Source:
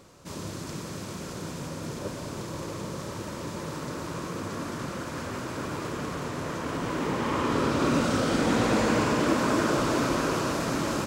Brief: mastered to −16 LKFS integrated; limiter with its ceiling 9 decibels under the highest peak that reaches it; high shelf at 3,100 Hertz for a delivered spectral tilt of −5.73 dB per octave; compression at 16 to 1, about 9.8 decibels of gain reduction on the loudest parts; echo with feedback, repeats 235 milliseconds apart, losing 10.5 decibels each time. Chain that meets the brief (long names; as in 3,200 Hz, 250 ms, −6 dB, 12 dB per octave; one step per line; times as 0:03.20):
high-shelf EQ 3,100 Hz −8 dB
downward compressor 16 to 1, threshold −30 dBFS
brickwall limiter −30.5 dBFS
repeating echo 235 ms, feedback 30%, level −10.5 dB
level +23 dB